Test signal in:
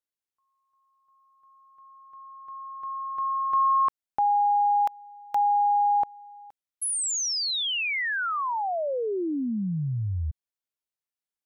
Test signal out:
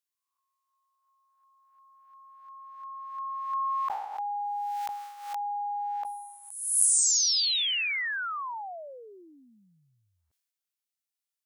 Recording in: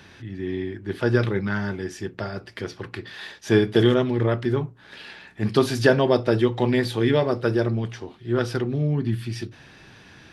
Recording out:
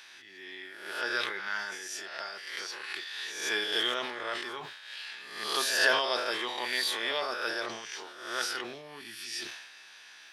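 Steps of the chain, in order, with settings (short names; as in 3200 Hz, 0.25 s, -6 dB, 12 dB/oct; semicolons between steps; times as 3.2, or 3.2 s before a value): spectral swells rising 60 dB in 0.76 s; HPF 870 Hz 12 dB/oct; high shelf 2200 Hz +9.5 dB; sustainer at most 50 dB/s; gain -8 dB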